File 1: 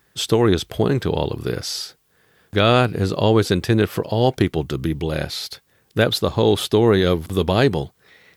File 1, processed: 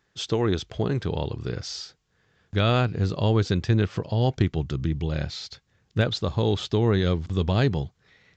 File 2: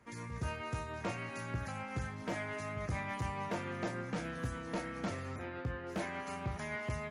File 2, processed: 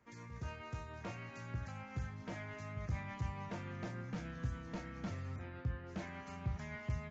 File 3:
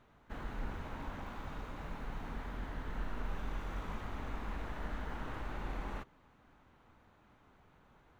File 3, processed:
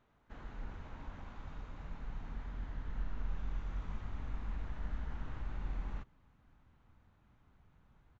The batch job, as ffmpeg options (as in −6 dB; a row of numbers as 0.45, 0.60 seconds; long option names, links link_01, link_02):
-af "aresample=16000,aresample=44100,asubboost=boost=3:cutoff=210,volume=-7.5dB"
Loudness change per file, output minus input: −5.5, −4.5, −1.5 LU